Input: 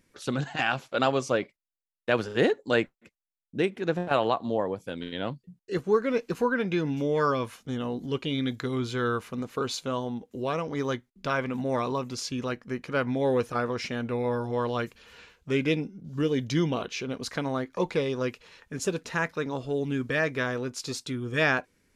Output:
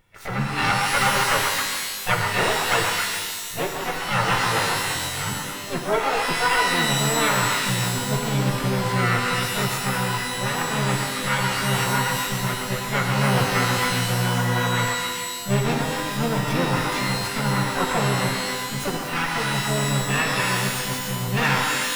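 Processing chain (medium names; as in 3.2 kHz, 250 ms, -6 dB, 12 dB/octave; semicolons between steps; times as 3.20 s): comb filter that takes the minimum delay 2.2 ms; graphic EQ 125/250/500/1000/2000/4000/8000 Hz +7/-6/-6/+7/+3/-7/-5 dB; repeats whose band climbs or falls 133 ms, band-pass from 910 Hz, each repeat 0.7 oct, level -1.5 dB; harmony voices +7 st -2 dB; pitch-shifted reverb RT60 1.5 s, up +12 st, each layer -2 dB, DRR 3 dB; trim +2 dB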